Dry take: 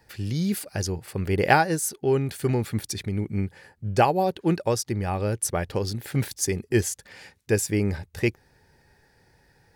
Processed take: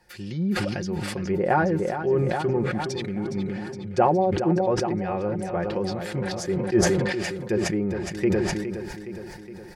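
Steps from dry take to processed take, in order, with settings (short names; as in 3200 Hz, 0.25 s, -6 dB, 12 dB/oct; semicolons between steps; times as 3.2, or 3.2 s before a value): comb 5.6 ms, depth 63%; treble ducked by the level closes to 1100 Hz, closed at -20 dBFS; bell 130 Hz -6 dB 0.68 oct; feedback echo 0.415 s, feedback 59%, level -10 dB; sustainer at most 28 dB/s; gain -2 dB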